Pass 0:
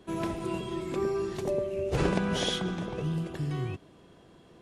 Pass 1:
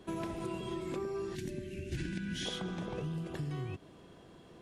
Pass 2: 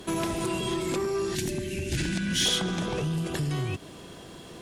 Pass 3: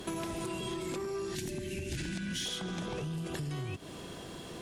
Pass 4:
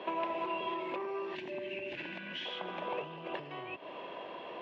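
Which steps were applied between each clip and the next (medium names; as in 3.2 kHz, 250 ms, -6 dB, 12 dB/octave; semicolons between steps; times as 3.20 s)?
time-frequency box 1.35–2.46 s, 380–1400 Hz -22 dB; compression, threshold -35 dBFS, peak gain reduction 11.5 dB
in parallel at -5 dB: sine folder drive 8 dB, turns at -23.5 dBFS; on the sum: treble shelf 3.2 kHz +11.5 dB
compression 6:1, threshold -35 dBFS, peak gain reduction 13 dB
cabinet simulation 430–2800 Hz, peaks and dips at 590 Hz +9 dB, 970 Hz +9 dB, 1.4 kHz -5 dB, 2.7 kHz +6 dB; trim +1 dB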